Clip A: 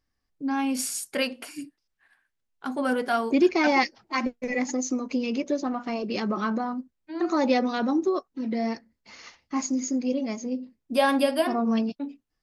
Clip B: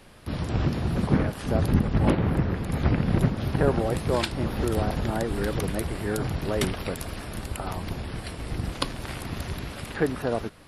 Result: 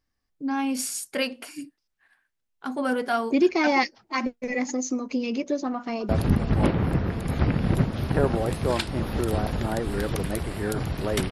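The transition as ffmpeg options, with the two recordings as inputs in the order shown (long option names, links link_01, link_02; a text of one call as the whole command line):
ffmpeg -i cue0.wav -i cue1.wav -filter_complex "[0:a]apad=whole_dur=11.31,atrim=end=11.31,atrim=end=6.092[link_01];[1:a]atrim=start=1.528:end=6.75[link_02];[link_01][link_02]acrossfade=duration=0.004:curve1=hsin:curve2=hsin,asplit=2[link_03][link_04];[link_04]afade=type=in:start_time=5.76:duration=0.01,afade=type=out:start_time=6.09:duration=0.01,aecho=0:1:240|480|720|960|1200|1440|1680|1920|2160|2400|2640|2880:0.298538|0.253758|0.215694|0.18334|0.155839|0.132463|0.112594|0.0957045|0.0813488|0.0691465|0.0587745|0.0499584[link_05];[link_03][link_05]amix=inputs=2:normalize=0" out.wav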